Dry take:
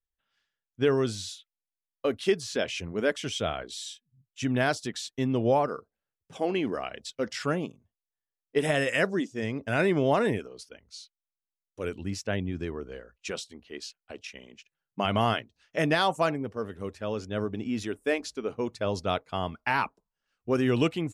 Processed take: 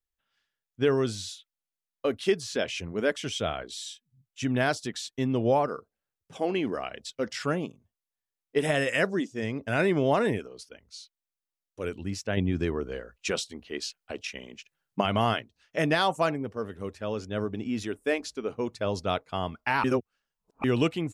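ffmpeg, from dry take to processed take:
-filter_complex "[0:a]asplit=5[a][b][c][d][e];[a]atrim=end=12.372[f];[b]atrim=start=12.368:end=15.012,asetpts=PTS-STARTPTS,volume=5.5dB[g];[c]atrim=start=15.008:end=19.842[h];[d]atrim=start=19.838:end=20.642,asetpts=PTS-STARTPTS,areverse[i];[e]atrim=start=20.638[j];[f][g]acrossfade=d=0.004:c1=hsin:c2=hsin[k];[k][h]acrossfade=d=0.004:c1=hsin:c2=hsin[l];[l][i]acrossfade=d=0.004:c1=hsin:c2=hsin[m];[m][j]acrossfade=d=0.004:c1=hsin:c2=hsin"

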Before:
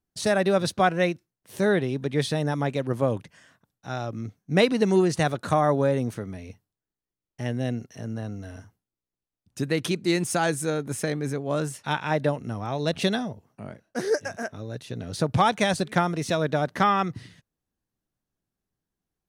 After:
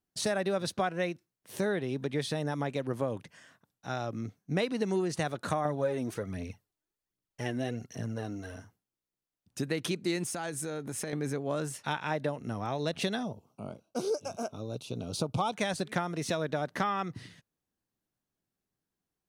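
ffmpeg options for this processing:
-filter_complex "[0:a]asettb=1/sr,asplit=3[a][b][c];[a]atrim=end=5.654[d];[b]atrim=start=5.65:end=8.55,asetpts=PTS-STARTPTS,afade=t=in:d=0.004:c=qsin,afade=t=out:st=2.896:d=0.004:c=qsin,aphaser=in_gain=1:out_gain=1:delay=3.5:decay=0.55:speed=1.3:type=triangular[e];[c]atrim=start=8.546[f];[d][e]acrossfade=d=0.004:c1=hsin:c2=qsin[g];[g][f]acrossfade=d=0.004:c1=qsin:c2=hsin,asettb=1/sr,asplit=3[h][i][j];[h]atrim=end=10.284[k];[i]atrim=start=10.28:end=11.13,asetpts=PTS-STARTPTS,afade=t=in:d=0.004:c=qsin,afade=t=out:st=0.846:d=0.004:c=qsin,acompressor=threshold=-30dB:ratio=10:attack=3.2:release=140:knee=1:detection=peak[l];[j]atrim=start=11.126[m];[k][l]acrossfade=d=0.004:c1=hsin:c2=qsin[n];[n][m]acrossfade=d=0.004:c1=qsin:c2=hsin,asettb=1/sr,asplit=3[o][p][q];[o]atrim=end=13.234[r];[p]atrim=start=13.23:end=15.53,asetpts=PTS-STARTPTS,afade=t=in:d=0.004:c=qsin,afade=t=out:st=2.296:d=0.004:c=qsin,asuperstop=centerf=1800:order=4:qfactor=1.6[s];[q]atrim=start=15.526[t];[r][s]acrossfade=d=0.004:c1=hsin:c2=qsin[u];[u][t]acrossfade=d=0.004:c1=qsin:c2=hsin,lowshelf=f=82:g=-10,acompressor=threshold=-28dB:ratio=3,volume=-1dB"

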